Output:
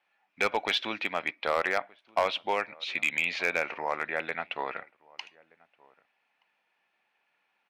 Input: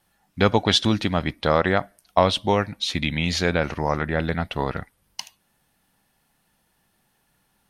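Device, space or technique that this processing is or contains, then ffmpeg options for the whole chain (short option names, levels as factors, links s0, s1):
megaphone: -filter_complex "[0:a]highpass=550,lowpass=2800,equalizer=f=2400:t=o:w=0.39:g=12,asplit=2[s0][s1];[s1]adelay=1224,volume=0.0562,highshelf=f=4000:g=-27.6[s2];[s0][s2]amix=inputs=2:normalize=0,asoftclip=type=hard:threshold=0.251,volume=0.562"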